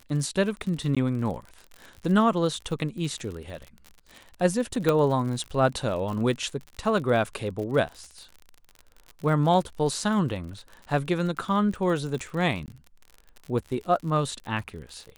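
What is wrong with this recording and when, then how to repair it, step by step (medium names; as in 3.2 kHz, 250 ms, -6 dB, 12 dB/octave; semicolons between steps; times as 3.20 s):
crackle 53 per s -34 dBFS
0.95–0.97 s: dropout 16 ms
4.89 s: pop -10 dBFS
12.66–12.68 s: dropout 18 ms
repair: de-click; interpolate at 0.95 s, 16 ms; interpolate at 12.66 s, 18 ms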